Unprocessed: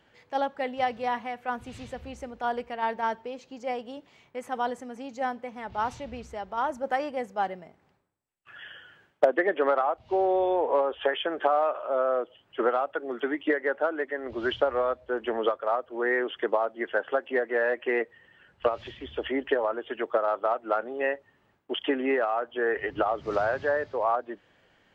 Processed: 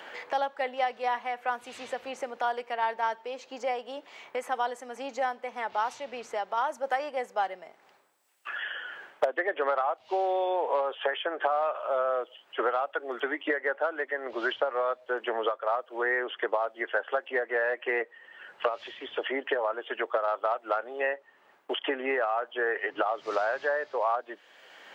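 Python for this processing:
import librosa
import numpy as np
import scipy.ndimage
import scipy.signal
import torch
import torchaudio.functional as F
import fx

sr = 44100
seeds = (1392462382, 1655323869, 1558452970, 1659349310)

y = scipy.signal.sosfilt(scipy.signal.butter(2, 540.0, 'highpass', fs=sr, output='sos'), x)
y = fx.band_squash(y, sr, depth_pct=70)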